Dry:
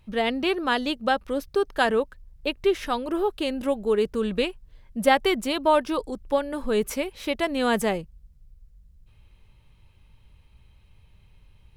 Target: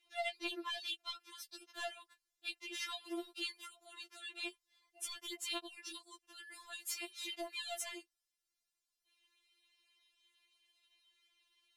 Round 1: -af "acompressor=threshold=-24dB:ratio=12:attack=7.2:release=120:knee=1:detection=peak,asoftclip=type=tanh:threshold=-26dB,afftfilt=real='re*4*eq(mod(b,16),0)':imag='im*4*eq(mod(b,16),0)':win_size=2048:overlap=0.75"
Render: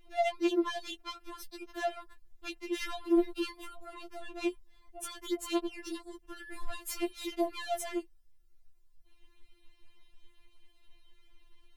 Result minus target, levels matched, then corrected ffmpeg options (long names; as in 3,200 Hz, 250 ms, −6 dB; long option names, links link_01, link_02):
4,000 Hz band −9.0 dB
-af "acompressor=threshold=-24dB:ratio=12:attack=7.2:release=120:knee=1:detection=peak,bandpass=frequency=5600:width_type=q:width=0.57:csg=0,asoftclip=type=tanh:threshold=-26dB,afftfilt=real='re*4*eq(mod(b,16),0)':imag='im*4*eq(mod(b,16),0)':win_size=2048:overlap=0.75"